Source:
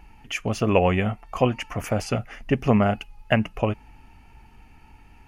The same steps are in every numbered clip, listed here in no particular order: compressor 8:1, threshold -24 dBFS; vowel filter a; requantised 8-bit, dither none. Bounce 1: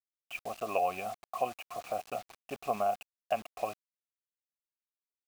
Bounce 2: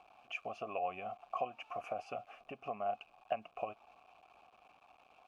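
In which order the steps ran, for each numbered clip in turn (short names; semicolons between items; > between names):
vowel filter > requantised > compressor; requantised > compressor > vowel filter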